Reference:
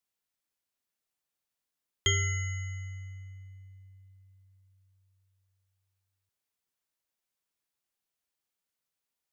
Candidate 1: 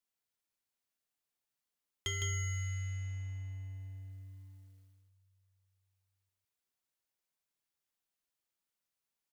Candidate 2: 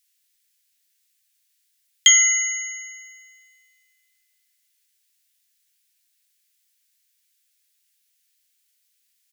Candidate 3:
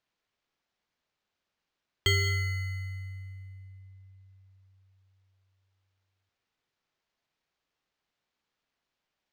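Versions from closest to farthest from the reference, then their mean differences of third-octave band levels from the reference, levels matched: 3, 2, 1; 2.5, 3.5, 7.0 decibels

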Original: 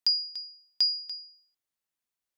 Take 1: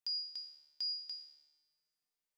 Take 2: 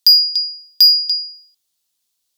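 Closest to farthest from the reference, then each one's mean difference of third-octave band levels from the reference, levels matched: 2, 1; 1.5, 3.5 decibels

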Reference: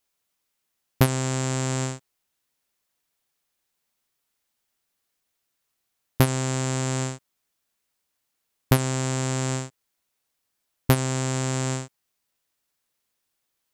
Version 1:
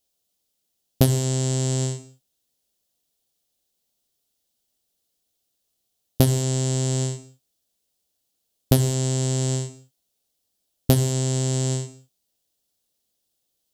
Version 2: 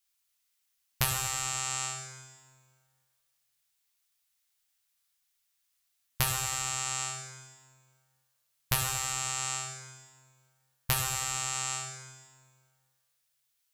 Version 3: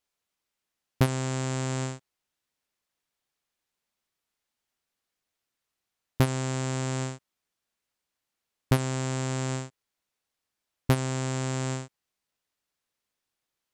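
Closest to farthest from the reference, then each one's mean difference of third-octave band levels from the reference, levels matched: 3, 1, 2; 1.0, 4.0, 9.5 decibels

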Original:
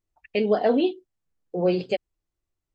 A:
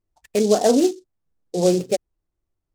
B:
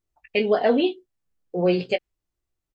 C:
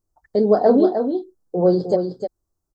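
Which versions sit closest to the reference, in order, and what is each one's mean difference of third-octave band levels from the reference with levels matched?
B, C, A; 1.5, 5.0, 7.0 decibels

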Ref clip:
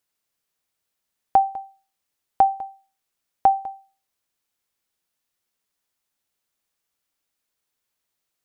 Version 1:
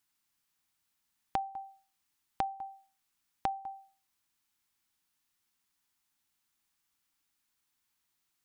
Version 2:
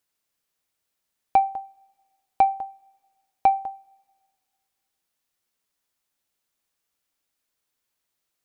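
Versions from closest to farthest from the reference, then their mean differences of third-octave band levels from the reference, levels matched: 2, 1; 1.0, 2.5 decibels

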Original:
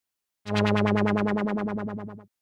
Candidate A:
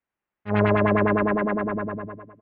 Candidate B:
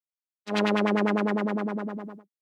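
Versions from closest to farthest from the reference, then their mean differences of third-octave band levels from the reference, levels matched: B, A; 2.5, 4.0 decibels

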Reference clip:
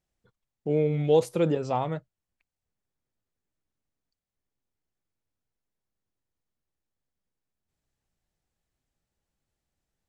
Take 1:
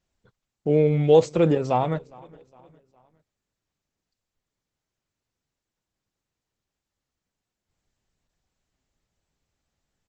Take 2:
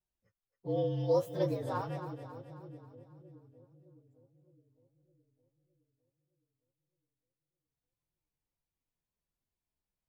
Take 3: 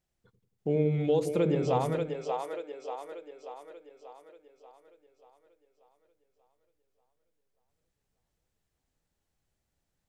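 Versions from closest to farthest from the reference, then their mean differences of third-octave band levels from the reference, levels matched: 1, 3, 2; 1.5, 4.0, 6.5 decibels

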